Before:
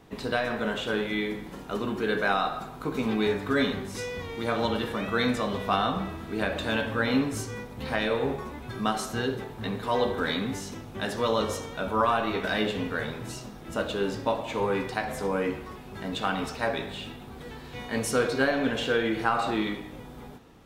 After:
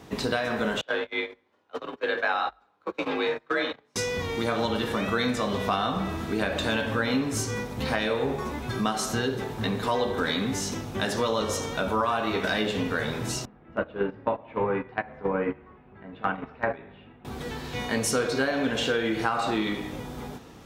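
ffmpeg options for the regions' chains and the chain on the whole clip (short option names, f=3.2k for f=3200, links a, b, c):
-filter_complex "[0:a]asettb=1/sr,asplit=3[a][b][c];[a]atrim=end=0.814[d];[b]atrim=start=0.81:end=3.96,asetpts=PTS-STARTPTS,afade=t=in:d=0.004:c=qsin,afade=t=out:st=3.146:d=0.004:c=qsin,agate=range=-30dB:threshold=-29dB:ratio=16:release=100:detection=peak,acrossover=split=380 4200:gain=0.224 1 0.141[e][f][g];[e][f][g]amix=inputs=3:normalize=0,afreqshift=47[h];[c]atrim=start=3.956[i];[d][h]acrossfade=d=0.004:c1=hsin:c2=qsin[j];[j][i]acrossfade=d=0.004:c1=qsin:c2=hsin,asettb=1/sr,asplit=3[k][l][m];[k]atrim=end=13.454[n];[l]atrim=start=13.45:end=17.25,asetpts=PTS-STARTPTS,afade=t=in:d=0.004:c=qsin,afade=t=out:st=3.796:d=0.004:c=qsin,lowpass=f=2.3k:w=0.5412,lowpass=f=2.3k:w=1.3066,agate=range=-16dB:threshold=-29dB:ratio=16:release=100:detection=peak[o];[m]atrim=start=17.246[p];[n][o]acrossfade=d=0.004:c1=hsin:c2=qsin[q];[q][p]acrossfade=d=0.004:c1=qsin:c2=hsin,highpass=44,equalizer=f=6k:w=1.4:g=4.5,acompressor=threshold=-31dB:ratio=3,volume=6.5dB"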